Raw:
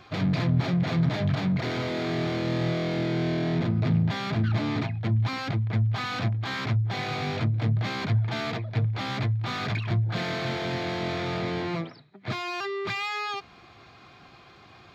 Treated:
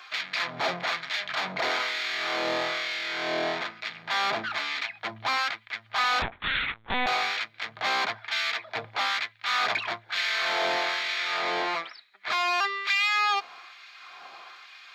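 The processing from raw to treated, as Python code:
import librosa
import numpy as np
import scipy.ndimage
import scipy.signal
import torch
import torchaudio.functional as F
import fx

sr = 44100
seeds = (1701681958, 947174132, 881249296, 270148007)

y = fx.filter_lfo_highpass(x, sr, shape='sine', hz=1.1, low_hz=700.0, high_hz=2000.0, q=1.1)
y = fx.lpc_vocoder(y, sr, seeds[0], excitation='pitch_kept', order=8, at=(6.22, 7.07))
y = y * librosa.db_to_amplitude(6.5)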